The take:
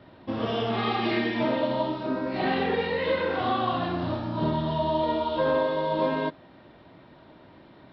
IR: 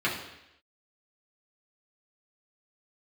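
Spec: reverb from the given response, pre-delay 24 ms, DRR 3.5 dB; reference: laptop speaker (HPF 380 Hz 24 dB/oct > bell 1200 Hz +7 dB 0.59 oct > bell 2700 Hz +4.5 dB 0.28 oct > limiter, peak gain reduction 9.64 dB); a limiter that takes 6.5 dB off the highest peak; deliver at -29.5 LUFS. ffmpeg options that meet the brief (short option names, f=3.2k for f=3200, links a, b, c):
-filter_complex "[0:a]alimiter=limit=-20.5dB:level=0:latency=1,asplit=2[a][b];[1:a]atrim=start_sample=2205,adelay=24[c];[b][c]afir=irnorm=-1:irlink=0,volume=-15.5dB[d];[a][d]amix=inputs=2:normalize=0,highpass=f=380:w=0.5412,highpass=f=380:w=1.3066,equalizer=f=1.2k:t=o:w=0.59:g=7,equalizer=f=2.7k:t=o:w=0.28:g=4.5,volume=2.5dB,alimiter=limit=-21.5dB:level=0:latency=1"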